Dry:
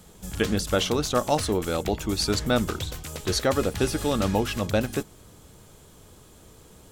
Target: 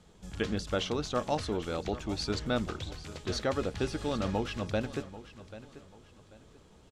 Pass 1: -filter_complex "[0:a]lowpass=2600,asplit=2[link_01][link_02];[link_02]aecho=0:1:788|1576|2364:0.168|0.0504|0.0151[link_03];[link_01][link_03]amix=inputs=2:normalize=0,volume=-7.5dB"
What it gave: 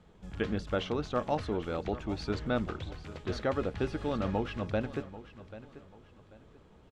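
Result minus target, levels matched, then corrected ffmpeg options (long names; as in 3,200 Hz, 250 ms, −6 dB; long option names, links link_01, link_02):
4,000 Hz band −6.0 dB
-filter_complex "[0:a]lowpass=5400,asplit=2[link_01][link_02];[link_02]aecho=0:1:788|1576|2364:0.168|0.0504|0.0151[link_03];[link_01][link_03]amix=inputs=2:normalize=0,volume=-7.5dB"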